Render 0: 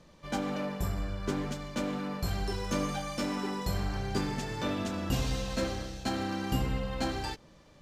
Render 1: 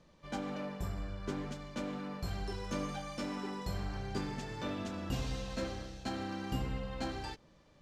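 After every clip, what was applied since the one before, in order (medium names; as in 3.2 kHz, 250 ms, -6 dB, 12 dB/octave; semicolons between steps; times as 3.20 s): treble shelf 11 kHz -11.5 dB; trim -6 dB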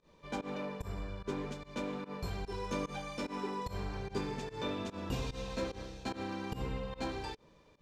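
volume shaper 147 bpm, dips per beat 1, -23 dB, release 109 ms; small resonant body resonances 440/970/2400/3600 Hz, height 9 dB, ringing for 30 ms; trim -1 dB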